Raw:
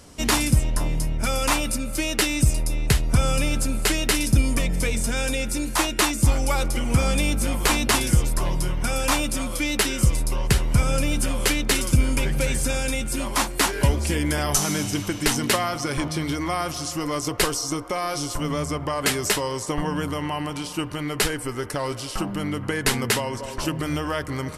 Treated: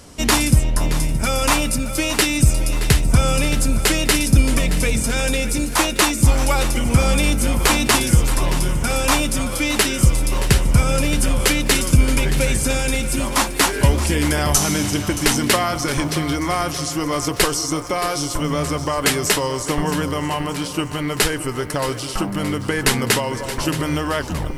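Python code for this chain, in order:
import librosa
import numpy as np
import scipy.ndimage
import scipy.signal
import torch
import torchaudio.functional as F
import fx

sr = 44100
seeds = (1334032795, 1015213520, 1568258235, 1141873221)

y = fx.tape_stop_end(x, sr, length_s=0.39)
y = fx.echo_crushed(y, sr, ms=623, feedback_pct=55, bits=8, wet_db=-12.5)
y = F.gain(torch.from_numpy(y), 4.5).numpy()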